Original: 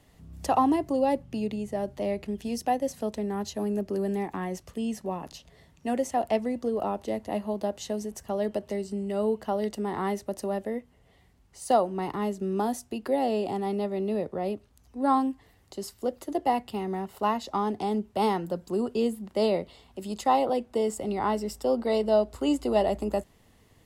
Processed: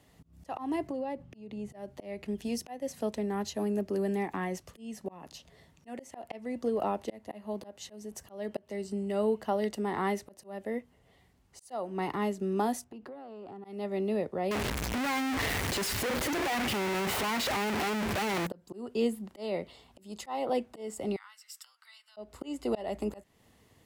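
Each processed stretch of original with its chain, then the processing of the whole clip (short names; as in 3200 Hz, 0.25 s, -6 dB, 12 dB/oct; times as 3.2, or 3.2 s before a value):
0.87–1.7 high shelf 5200 Hz -11 dB + compressor, threshold -30 dBFS
12.84–13.65 LPF 1600 Hz 6 dB/oct + compressor 16:1, threshold -37 dBFS + tube stage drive 35 dB, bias 0.25
14.51–18.47 infinite clipping + high shelf 5800 Hz -4.5 dB
21.16–22.17 compressor 4:1, threshold -37 dBFS + steep high-pass 1300 Hz
whole clip: HPF 82 Hz 6 dB/oct; dynamic EQ 2100 Hz, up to +5 dB, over -48 dBFS, Q 1.5; auto swell 0.311 s; gain -1.5 dB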